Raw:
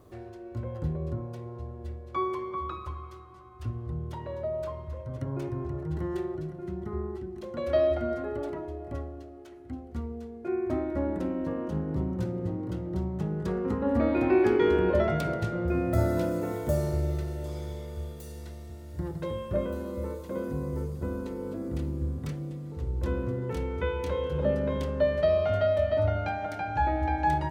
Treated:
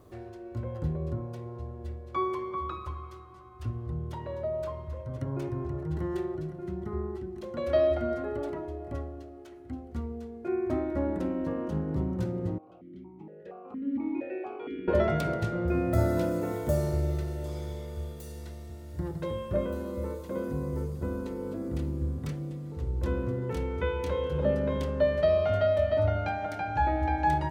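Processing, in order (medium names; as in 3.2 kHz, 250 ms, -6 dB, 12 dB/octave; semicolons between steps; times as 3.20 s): 12.58–14.88 s: stepped vowel filter 4.3 Hz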